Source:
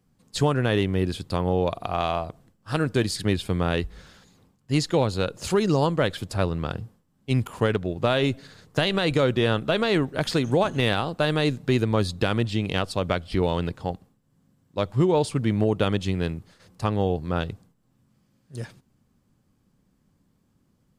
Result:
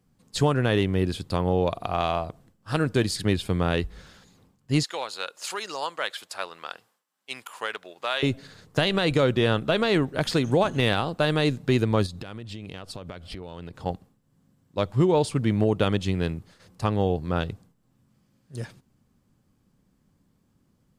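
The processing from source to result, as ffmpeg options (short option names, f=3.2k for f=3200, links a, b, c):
-filter_complex "[0:a]asettb=1/sr,asplit=3[a][b][c];[a]atrim=end=4.834[d];[b]atrim=start=4.83:end=8.23,asetpts=PTS-STARTPTS,afade=t=in:d=0.004:c=qsin,afade=t=out:st=3.396:d=0.004:c=qsin,highpass=980[e];[c]atrim=start=8.226[f];[d][e]acrossfade=d=0.004:c1=hsin:c2=qsin[g];[g][f]acrossfade=d=0.004:c1=qsin:c2=hsin,asettb=1/sr,asplit=3[h][i][j];[h]atrim=end=12.064[k];[i]atrim=start=12.06:end=13.86,asetpts=PTS-STARTPTS,afade=t=in:d=0.004:c=qsin,afade=t=out:st=1.796:d=0.004:c=qsin,acompressor=threshold=-33dB:ratio=20:attack=3.2:release=140:knee=1:detection=peak[l];[j]atrim=start=13.856[m];[k][l]acrossfade=d=0.004:c1=hsin:c2=qsin[n];[n][m]acrossfade=d=0.004:c1=qsin:c2=hsin"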